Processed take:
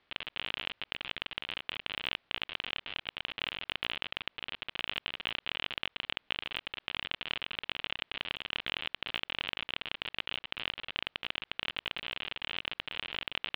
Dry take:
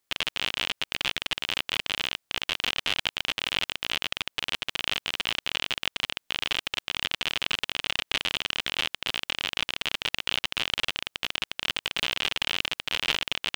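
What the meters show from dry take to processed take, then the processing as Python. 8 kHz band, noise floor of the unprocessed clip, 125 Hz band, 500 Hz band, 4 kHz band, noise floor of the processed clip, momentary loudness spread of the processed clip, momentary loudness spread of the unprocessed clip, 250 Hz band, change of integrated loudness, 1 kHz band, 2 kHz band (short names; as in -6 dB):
under -30 dB, -78 dBFS, -7.0 dB, -7.0 dB, -8.5 dB, -79 dBFS, 3 LU, 3 LU, -7.0 dB, -8.0 dB, -7.0 dB, -7.5 dB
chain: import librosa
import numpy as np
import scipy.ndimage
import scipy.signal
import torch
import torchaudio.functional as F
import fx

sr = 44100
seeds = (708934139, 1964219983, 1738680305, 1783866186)

y = scipy.signal.sosfilt(scipy.signal.cheby2(4, 40, 6800.0, 'lowpass', fs=sr, output='sos'), x)
y = fx.over_compress(y, sr, threshold_db=-41.0, ratio=-1.0)
y = y * 10.0 ** (2.5 / 20.0)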